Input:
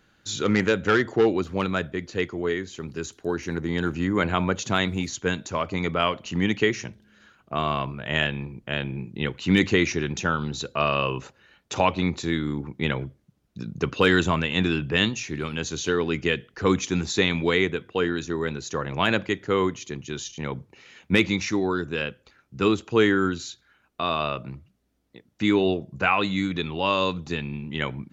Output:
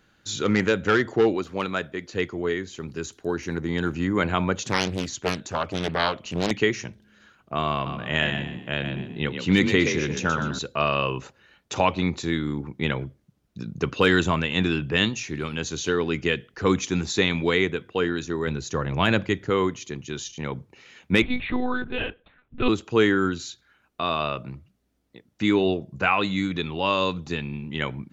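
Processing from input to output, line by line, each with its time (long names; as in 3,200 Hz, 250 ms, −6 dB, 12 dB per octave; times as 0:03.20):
0:01.35–0:02.13: low-shelf EQ 180 Hz −10.5 dB
0:04.62–0:06.51: highs frequency-modulated by the lows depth 0.97 ms
0:07.73–0:10.59: echo with shifted repeats 124 ms, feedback 34%, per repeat +39 Hz, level −7 dB
0:18.47–0:19.50: low-shelf EQ 150 Hz +9.5 dB
0:21.22–0:22.69: one-pitch LPC vocoder at 8 kHz 250 Hz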